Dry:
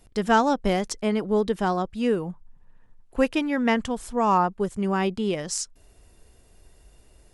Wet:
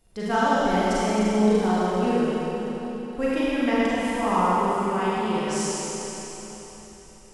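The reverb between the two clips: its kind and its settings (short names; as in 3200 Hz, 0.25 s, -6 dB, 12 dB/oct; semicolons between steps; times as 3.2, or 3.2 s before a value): Schroeder reverb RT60 4 s, combs from 33 ms, DRR -9.5 dB; gain -8.5 dB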